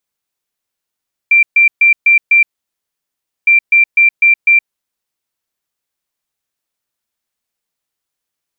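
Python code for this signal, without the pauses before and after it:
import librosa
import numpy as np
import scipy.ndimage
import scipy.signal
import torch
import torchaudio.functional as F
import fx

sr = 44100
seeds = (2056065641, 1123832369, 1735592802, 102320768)

y = fx.beep_pattern(sr, wave='sine', hz=2360.0, on_s=0.12, off_s=0.13, beeps=5, pause_s=1.04, groups=2, level_db=-4.5)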